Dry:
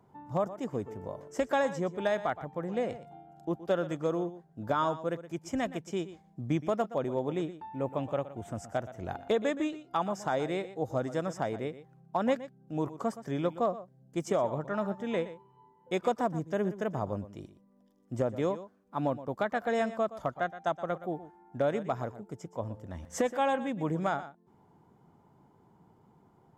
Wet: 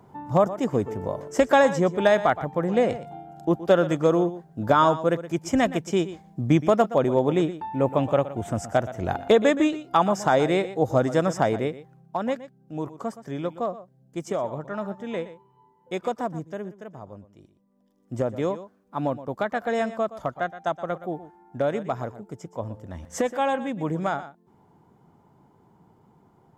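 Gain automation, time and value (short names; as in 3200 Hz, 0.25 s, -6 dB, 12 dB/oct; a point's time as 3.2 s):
11.52 s +10.5 dB
12.27 s +1 dB
16.38 s +1 dB
16.8 s -8 dB
17.37 s -8 dB
18.14 s +4 dB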